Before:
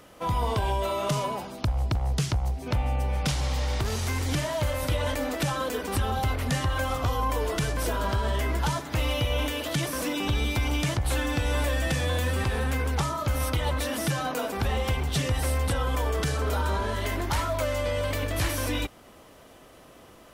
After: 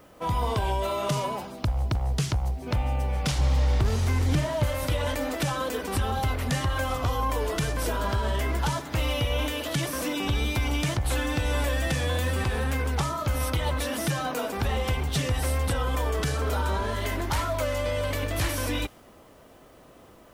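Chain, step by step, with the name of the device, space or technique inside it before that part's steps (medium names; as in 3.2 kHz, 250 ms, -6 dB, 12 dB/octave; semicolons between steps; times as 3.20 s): 3.38–4.64 s: tilt EQ -1.5 dB/octave; plain cassette with noise reduction switched in (tape noise reduction on one side only decoder only; wow and flutter 23 cents; white noise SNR 40 dB)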